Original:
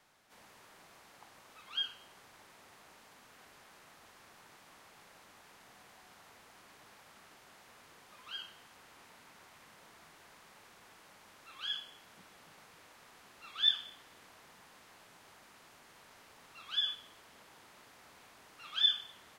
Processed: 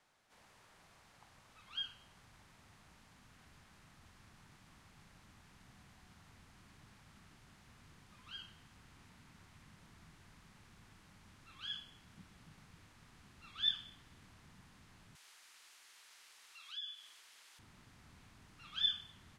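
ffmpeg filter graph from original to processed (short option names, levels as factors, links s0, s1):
-filter_complex "[0:a]asettb=1/sr,asplit=3[s0][s1][s2];[s0]atrim=end=15.154[s3];[s1]atrim=start=15.15:end=17.59,asetpts=PTS-STARTPTS,afade=t=in:d=0.004:c=qsin,afade=t=out:st=2.436:d=0.004:c=qsin,highpass=f=400:w=0.5412,highpass=f=400:w=1.3066,tiltshelf=f=1300:g=-9,acompressor=threshold=0.00447:ratio=2:attack=3.2:release=140:knee=1:detection=peak[s4];[s2]atrim=start=17.586[s5];[s3][s4]acrossfade=d=0.004:c1=hsin:c2=qsin[s6];[s6][s5]acrossfade=d=0.004:c1=qsin:c2=hsin,lowpass=11000,asubboost=boost=10.5:cutoff=160,volume=0.531"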